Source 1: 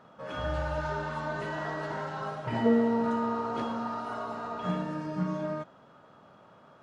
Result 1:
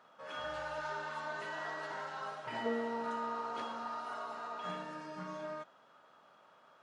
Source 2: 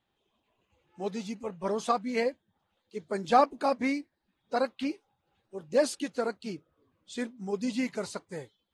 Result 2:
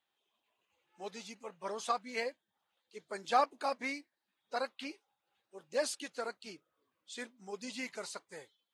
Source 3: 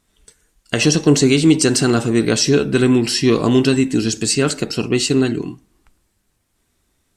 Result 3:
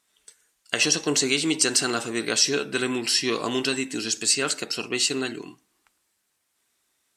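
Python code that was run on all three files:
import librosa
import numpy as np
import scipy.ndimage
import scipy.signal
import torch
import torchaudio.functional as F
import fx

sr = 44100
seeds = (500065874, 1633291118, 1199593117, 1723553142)

y = fx.highpass(x, sr, hz=1100.0, slope=6)
y = y * librosa.db_to_amplitude(-2.0)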